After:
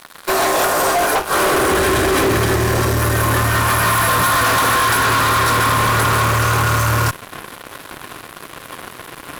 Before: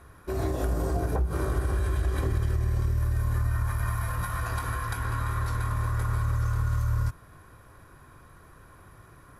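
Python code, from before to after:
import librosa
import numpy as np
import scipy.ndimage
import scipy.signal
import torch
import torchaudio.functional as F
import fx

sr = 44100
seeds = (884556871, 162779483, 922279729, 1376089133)

y = fx.filter_sweep_highpass(x, sr, from_hz=850.0, to_hz=250.0, start_s=1.28, end_s=1.81, q=0.83)
y = fx.fuzz(y, sr, gain_db=44.0, gate_db=-53.0)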